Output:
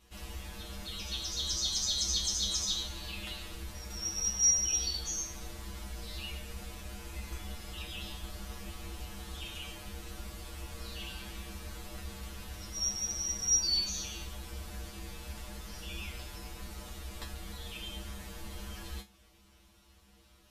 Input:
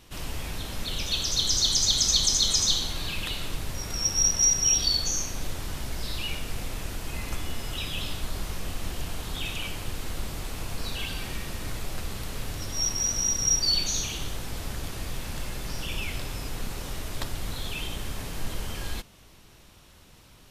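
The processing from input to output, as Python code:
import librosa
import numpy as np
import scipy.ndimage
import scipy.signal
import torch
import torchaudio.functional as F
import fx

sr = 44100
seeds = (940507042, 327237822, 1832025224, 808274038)

y = fx.comb_fb(x, sr, f0_hz=67.0, decay_s=0.2, harmonics='odd', damping=0.0, mix_pct=100)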